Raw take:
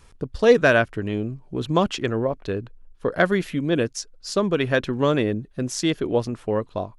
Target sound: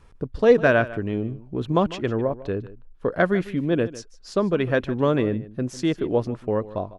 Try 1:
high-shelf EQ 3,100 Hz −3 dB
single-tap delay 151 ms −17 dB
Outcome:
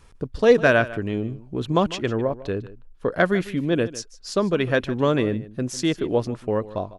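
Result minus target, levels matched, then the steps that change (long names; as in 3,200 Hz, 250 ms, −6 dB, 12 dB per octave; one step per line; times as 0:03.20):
8,000 Hz band +7.5 dB
change: high-shelf EQ 3,100 Hz −12.5 dB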